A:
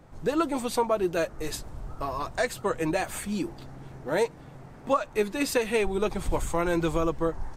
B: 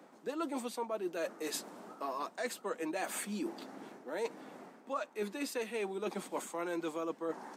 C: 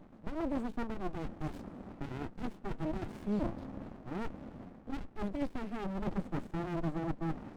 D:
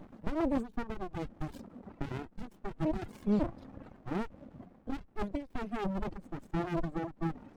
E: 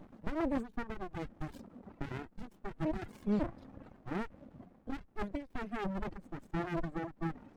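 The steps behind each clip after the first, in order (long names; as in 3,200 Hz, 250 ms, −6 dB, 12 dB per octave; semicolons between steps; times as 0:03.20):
Butterworth high-pass 200 Hz 48 dB per octave; reversed playback; downward compressor 6 to 1, threshold −35 dBFS, peak gain reduction 15.5 dB; reversed playback
spectral tilt −4.5 dB per octave; windowed peak hold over 65 samples
reverb reduction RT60 1.9 s; every ending faded ahead of time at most 190 dB per second; level +5.5 dB
dynamic equaliser 1,800 Hz, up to +5 dB, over −54 dBFS, Q 1.5; level −3 dB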